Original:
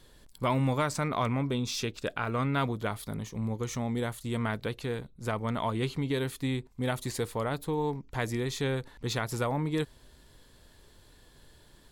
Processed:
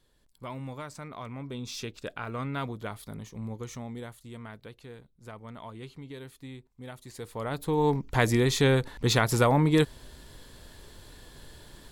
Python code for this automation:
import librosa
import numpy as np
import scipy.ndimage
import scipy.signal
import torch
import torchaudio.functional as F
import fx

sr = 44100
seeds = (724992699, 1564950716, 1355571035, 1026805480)

y = fx.gain(x, sr, db=fx.line((1.26, -11.5), (1.73, -4.5), (3.58, -4.5), (4.44, -12.5), (7.06, -12.5), (7.45, -2.0), (7.94, 8.0)))